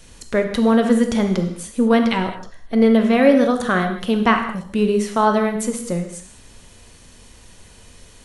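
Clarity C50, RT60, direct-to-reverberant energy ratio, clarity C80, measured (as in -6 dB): 7.0 dB, not exponential, 5.0 dB, 10.0 dB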